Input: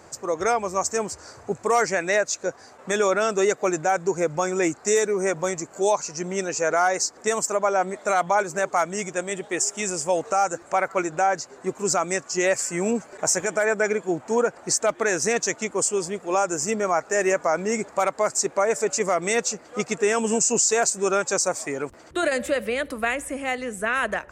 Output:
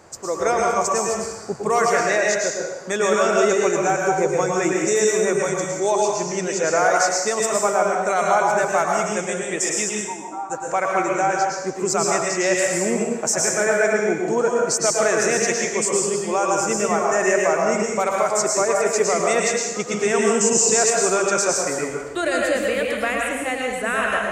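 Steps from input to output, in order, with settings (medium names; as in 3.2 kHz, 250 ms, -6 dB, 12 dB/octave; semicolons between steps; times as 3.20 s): 9.89–10.50 s: two resonant band-passes 520 Hz, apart 1.6 oct; plate-style reverb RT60 0.99 s, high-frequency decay 0.95×, pre-delay 95 ms, DRR -1.5 dB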